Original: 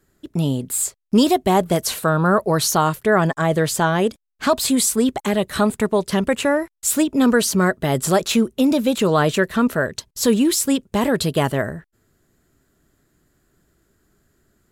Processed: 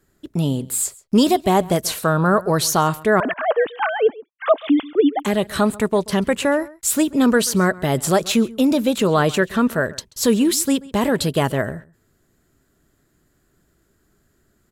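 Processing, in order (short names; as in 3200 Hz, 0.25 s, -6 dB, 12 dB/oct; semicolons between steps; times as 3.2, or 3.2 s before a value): 3.2–5.2 sine-wave speech; outdoor echo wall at 23 m, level -21 dB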